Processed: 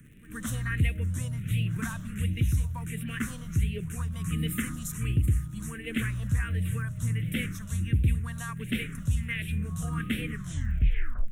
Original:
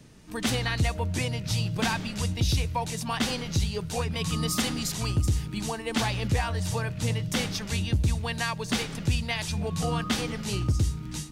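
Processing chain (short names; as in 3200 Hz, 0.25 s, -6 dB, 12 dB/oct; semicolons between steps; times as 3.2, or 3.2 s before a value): tape stop at the end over 1.02 s; phaser stages 4, 1.4 Hz, lowest notch 370–1100 Hz; crackle 97/s -44 dBFS; fixed phaser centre 2000 Hz, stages 4; pre-echo 0.122 s -19 dB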